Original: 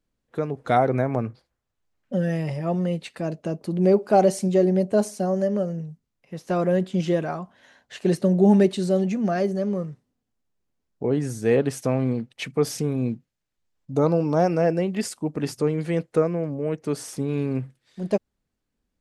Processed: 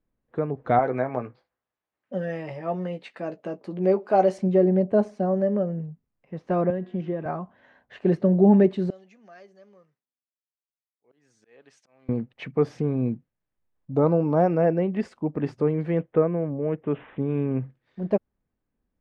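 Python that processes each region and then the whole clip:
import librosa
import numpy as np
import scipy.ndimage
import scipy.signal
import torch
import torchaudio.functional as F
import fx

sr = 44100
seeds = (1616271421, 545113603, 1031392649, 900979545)

y = fx.chain(x, sr, fx.highpass(hz=480.0, slope=6),
    fx.high_shelf(hz=4200.0, db=11.0),
    fx.doubler(ms=16.0, db=-9.0), at=(0.79, 4.38))
y = fx.chain(y, sr, fx.high_shelf(hz=6200.0, db=-11.0),
    fx.comb_fb(f0_hz=120.0, decay_s=1.2, harmonics='all', damping=0.0, mix_pct=60),
    fx.band_squash(depth_pct=100), at=(6.7, 7.26))
y = fx.chain(y, sr, fx.auto_swell(attack_ms=296.0),
    fx.bandpass_q(hz=6700.0, q=1.3), at=(8.9, 12.09))
y = fx.chain(y, sr, fx.lowpass(hz=5000.0, slope=24),
    fx.resample_bad(factor=6, down='none', up='filtered'), at=(16.0, 17.6))
y = scipy.signal.sosfilt(scipy.signal.butter(2, 1800.0, 'lowpass', fs=sr, output='sos'), y)
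y = fx.notch(y, sr, hz=1400.0, q=22.0)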